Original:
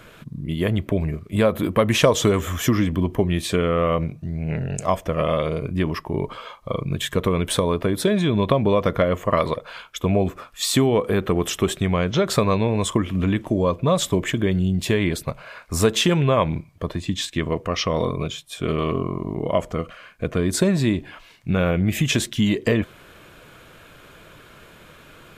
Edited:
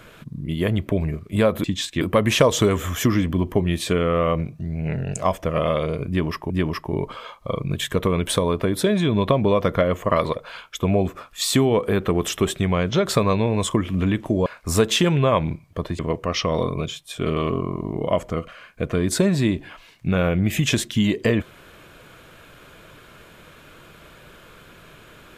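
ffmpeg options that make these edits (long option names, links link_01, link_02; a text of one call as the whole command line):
ffmpeg -i in.wav -filter_complex "[0:a]asplit=6[link_01][link_02][link_03][link_04][link_05][link_06];[link_01]atrim=end=1.642[link_07];[link_02]atrim=start=17.038:end=17.412[link_08];[link_03]atrim=start=1.638:end=6.132[link_09];[link_04]atrim=start=5.708:end=13.672[link_10];[link_05]atrim=start=15.508:end=17.042[link_11];[link_06]atrim=start=17.408[link_12];[link_07][link_08]acrossfade=duration=0.004:curve1=hsin:curve2=hsin[link_13];[link_13][link_09]acrossfade=duration=0.004:curve1=hsin:curve2=hsin[link_14];[link_14][link_10]acrossfade=duration=0.004:curve1=hsin:curve2=hsin[link_15];[link_15][link_11]acrossfade=duration=0.004:curve1=hsin:curve2=hsin[link_16];[link_16][link_12]acrossfade=duration=0.004:curve1=hsin:curve2=hsin" out.wav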